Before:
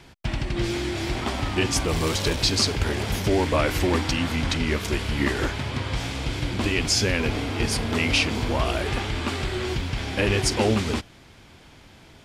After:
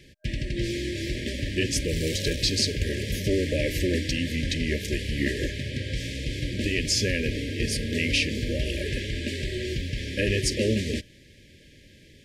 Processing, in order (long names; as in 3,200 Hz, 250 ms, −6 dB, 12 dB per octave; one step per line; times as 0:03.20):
brick-wall band-stop 620–1,600 Hz
level −2.5 dB